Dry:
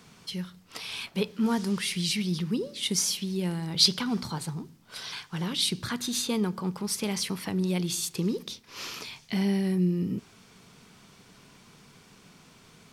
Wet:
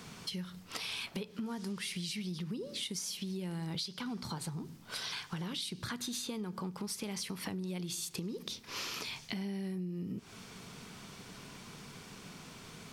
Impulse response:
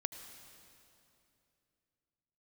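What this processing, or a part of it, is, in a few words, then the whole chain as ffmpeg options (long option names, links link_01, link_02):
serial compression, peaks first: -af "acompressor=threshold=-36dB:ratio=5,acompressor=threshold=-43dB:ratio=2.5,volume=4.5dB"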